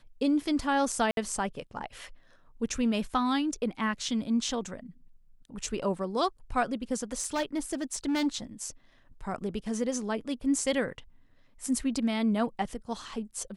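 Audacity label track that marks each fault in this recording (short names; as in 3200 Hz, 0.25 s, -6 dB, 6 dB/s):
1.110000	1.170000	gap 62 ms
7.130000	8.270000	clipped -24.5 dBFS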